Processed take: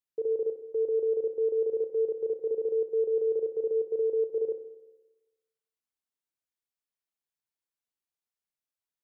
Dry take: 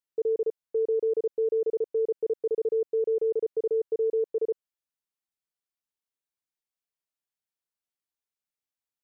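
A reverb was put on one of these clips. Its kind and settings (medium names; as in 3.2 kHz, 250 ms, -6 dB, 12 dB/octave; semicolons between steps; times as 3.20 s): spring tank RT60 1.1 s, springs 31/56 ms, chirp 80 ms, DRR 8 dB; trim -3.5 dB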